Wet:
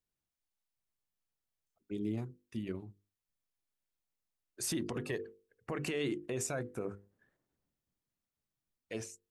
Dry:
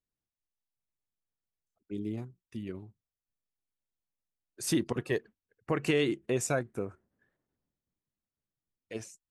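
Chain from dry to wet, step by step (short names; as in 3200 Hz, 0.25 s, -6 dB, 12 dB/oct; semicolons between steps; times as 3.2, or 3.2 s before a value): notches 50/100/150/200/250/300/350/400/450/500 Hz; limiter -28 dBFS, peak gain reduction 11.5 dB; gain +1 dB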